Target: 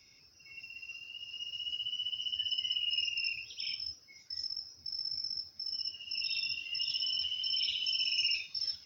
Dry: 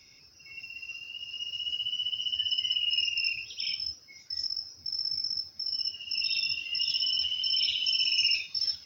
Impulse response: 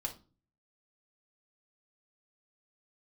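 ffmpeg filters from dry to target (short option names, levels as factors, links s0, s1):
-filter_complex "[0:a]acrossover=split=7500[s0][s1];[s1]acompressor=threshold=0.00355:ratio=4:attack=1:release=60[s2];[s0][s2]amix=inputs=2:normalize=0,volume=0.562"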